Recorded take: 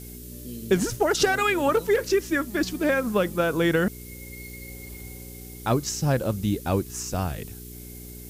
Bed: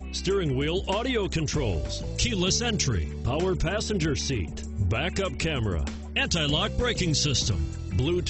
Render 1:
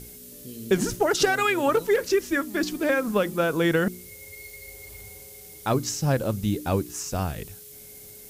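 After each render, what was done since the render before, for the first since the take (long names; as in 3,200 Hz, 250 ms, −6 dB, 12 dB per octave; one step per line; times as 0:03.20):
hum removal 60 Hz, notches 6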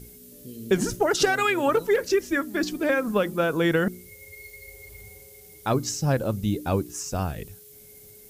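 broadband denoise 6 dB, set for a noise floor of −45 dBFS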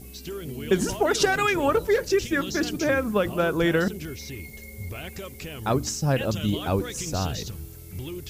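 mix in bed −10 dB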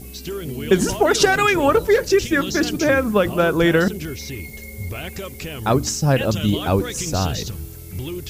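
level +6 dB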